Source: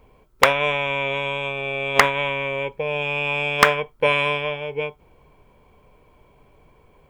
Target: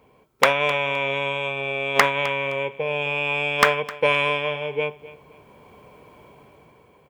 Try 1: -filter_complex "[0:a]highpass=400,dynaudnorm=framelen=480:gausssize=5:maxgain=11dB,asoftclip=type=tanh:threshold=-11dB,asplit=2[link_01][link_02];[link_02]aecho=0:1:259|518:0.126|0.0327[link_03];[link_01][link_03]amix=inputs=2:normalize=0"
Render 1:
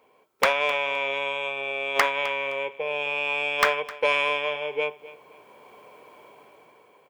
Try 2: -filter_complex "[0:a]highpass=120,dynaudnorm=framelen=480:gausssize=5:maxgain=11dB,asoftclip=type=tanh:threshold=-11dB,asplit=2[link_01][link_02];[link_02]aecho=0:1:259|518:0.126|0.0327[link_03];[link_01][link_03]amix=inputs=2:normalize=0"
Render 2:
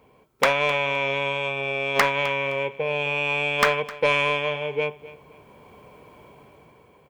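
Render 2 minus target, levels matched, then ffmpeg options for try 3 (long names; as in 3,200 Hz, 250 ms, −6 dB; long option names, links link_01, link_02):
soft clipping: distortion +8 dB
-filter_complex "[0:a]highpass=120,dynaudnorm=framelen=480:gausssize=5:maxgain=11dB,asoftclip=type=tanh:threshold=-4dB,asplit=2[link_01][link_02];[link_02]aecho=0:1:259|518:0.126|0.0327[link_03];[link_01][link_03]amix=inputs=2:normalize=0"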